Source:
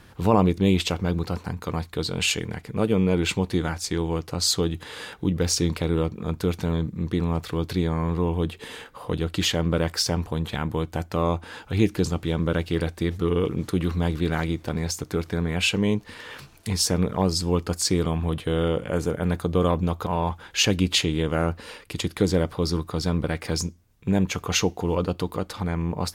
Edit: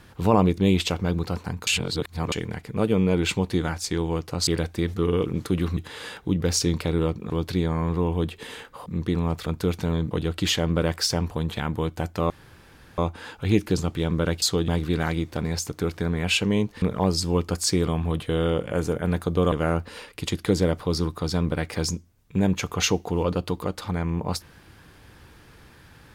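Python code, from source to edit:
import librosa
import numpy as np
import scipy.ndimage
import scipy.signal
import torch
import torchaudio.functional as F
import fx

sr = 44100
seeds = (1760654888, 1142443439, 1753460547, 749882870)

y = fx.edit(x, sr, fx.reverse_span(start_s=1.67, length_s=0.65),
    fx.swap(start_s=4.47, length_s=0.26, other_s=12.7, other_length_s=1.3),
    fx.swap(start_s=6.26, length_s=0.65, other_s=7.51, other_length_s=1.56),
    fx.insert_room_tone(at_s=11.26, length_s=0.68),
    fx.cut(start_s=16.14, length_s=0.86),
    fx.cut(start_s=19.7, length_s=1.54), tone=tone)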